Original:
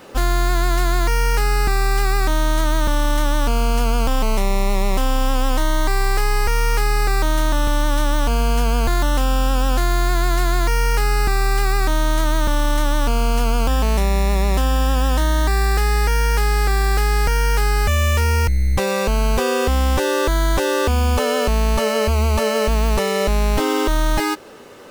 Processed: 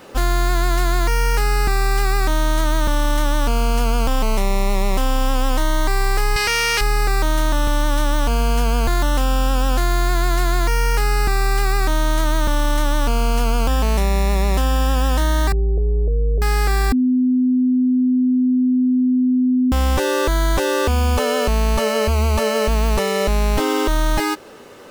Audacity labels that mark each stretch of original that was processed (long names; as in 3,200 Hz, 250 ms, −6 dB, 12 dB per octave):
6.360000	6.810000	meter weighting curve D
15.520000	16.420000	Butterworth low-pass 670 Hz 96 dB per octave
16.920000	19.720000	beep over 253 Hz −13 dBFS